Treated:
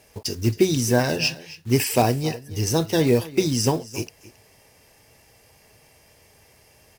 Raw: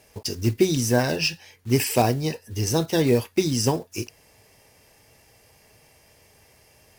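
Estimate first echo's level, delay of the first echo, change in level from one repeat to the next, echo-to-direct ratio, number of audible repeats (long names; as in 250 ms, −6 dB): −18.5 dB, 271 ms, repeats not evenly spaced, −18.5 dB, 1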